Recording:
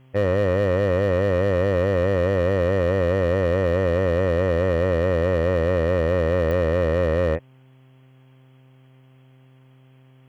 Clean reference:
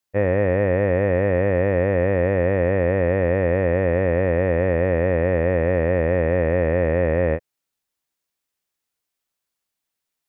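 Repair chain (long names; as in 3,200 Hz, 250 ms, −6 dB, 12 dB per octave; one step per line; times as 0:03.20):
clipped peaks rebuilt −14 dBFS
click removal
hum removal 130.6 Hz, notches 9
downward expander −44 dBFS, range −21 dB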